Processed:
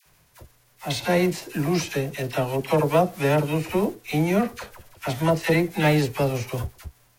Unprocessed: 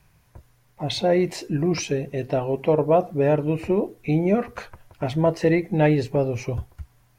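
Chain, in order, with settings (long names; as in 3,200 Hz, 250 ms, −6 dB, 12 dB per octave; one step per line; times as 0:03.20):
spectral envelope flattened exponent 0.6
all-pass dispersion lows, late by 60 ms, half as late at 860 Hz
level −1 dB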